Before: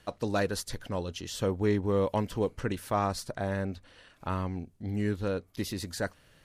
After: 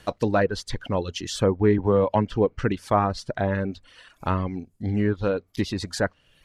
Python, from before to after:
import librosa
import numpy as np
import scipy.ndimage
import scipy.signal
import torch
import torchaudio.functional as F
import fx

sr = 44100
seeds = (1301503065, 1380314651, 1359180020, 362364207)

y = fx.dereverb_blind(x, sr, rt60_s=0.84)
y = fx.env_lowpass_down(y, sr, base_hz=1900.0, full_db=-26.0)
y = fx.band_squash(y, sr, depth_pct=40, at=(1.78, 2.3))
y = y * 10.0 ** (8.5 / 20.0)